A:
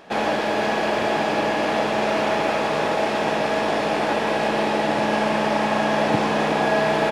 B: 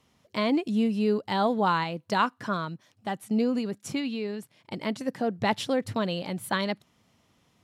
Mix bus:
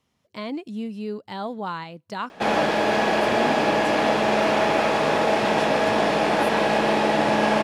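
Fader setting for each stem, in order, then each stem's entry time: +1.0, -6.0 dB; 2.30, 0.00 s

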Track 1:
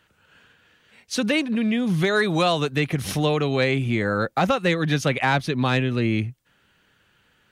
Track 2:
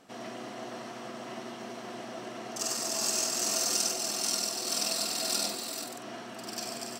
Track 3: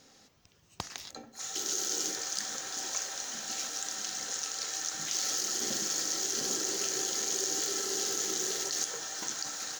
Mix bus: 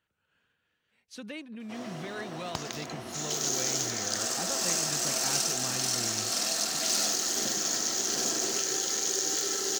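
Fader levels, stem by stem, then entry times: -19.0, -1.0, +2.5 dB; 0.00, 1.60, 1.75 s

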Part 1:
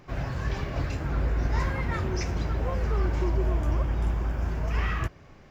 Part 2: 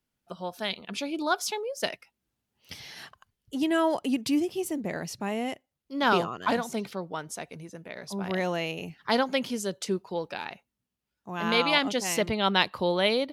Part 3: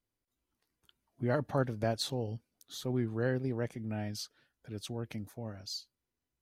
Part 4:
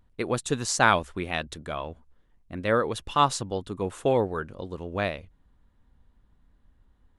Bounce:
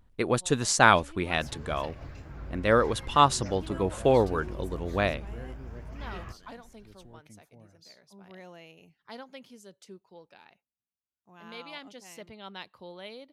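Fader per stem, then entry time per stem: -14.0, -19.0, -13.5, +1.5 dB; 1.25, 0.00, 2.15, 0.00 s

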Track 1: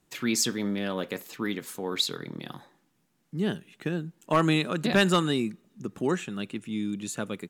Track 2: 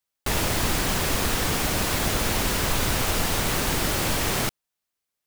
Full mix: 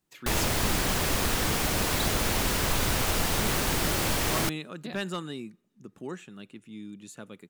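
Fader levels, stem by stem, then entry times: -11.0, -2.5 dB; 0.00, 0.00 s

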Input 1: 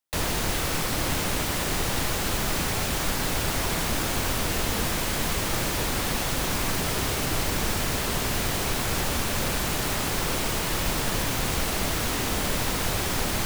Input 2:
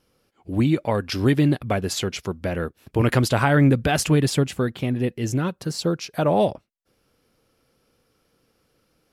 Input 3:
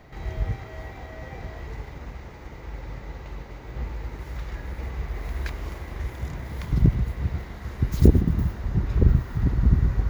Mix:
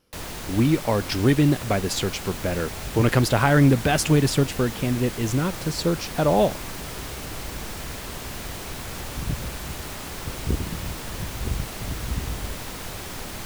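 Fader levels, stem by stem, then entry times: -8.0, 0.0, -10.5 dB; 0.00, 0.00, 2.45 s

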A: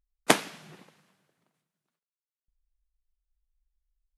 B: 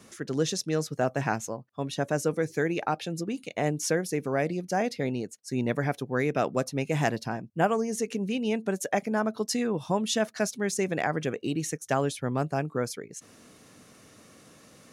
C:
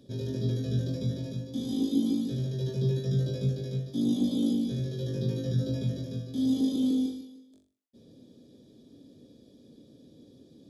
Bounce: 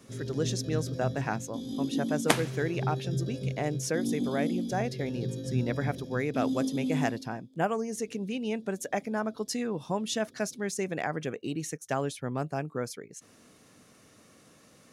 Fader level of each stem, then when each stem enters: -3.5, -4.0, -4.5 dB; 2.00, 0.00, 0.00 s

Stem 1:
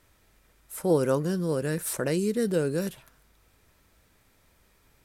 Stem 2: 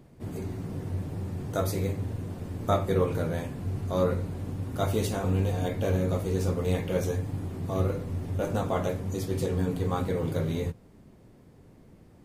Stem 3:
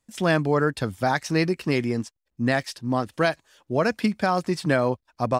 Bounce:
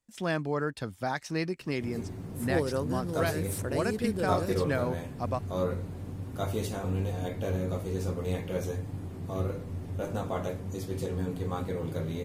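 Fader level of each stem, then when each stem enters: -6.5, -4.5, -9.0 dB; 1.65, 1.60, 0.00 s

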